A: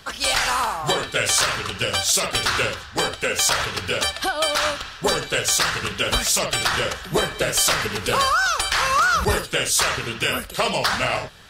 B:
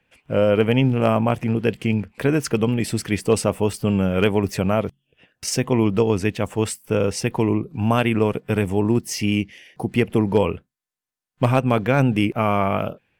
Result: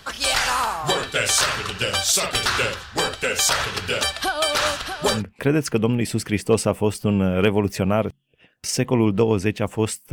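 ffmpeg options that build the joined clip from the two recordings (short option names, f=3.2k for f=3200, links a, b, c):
-filter_complex "[0:a]asplit=3[a][b][c];[a]afade=t=out:st=4.53:d=0.02[d];[b]aecho=1:1:639|1278|1917:0.398|0.104|0.0269,afade=t=in:st=4.53:d=0.02,afade=t=out:st=5.23:d=0.02[e];[c]afade=t=in:st=5.23:d=0.02[f];[d][e][f]amix=inputs=3:normalize=0,apad=whole_dur=10.12,atrim=end=10.12,atrim=end=5.23,asetpts=PTS-STARTPTS[g];[1:a]atrim=start=1.88:end=6.91,asetpts=PTS-STARTPTS[h];[g][h]acrossfade=d=0.14:c1=tri:c2=tri"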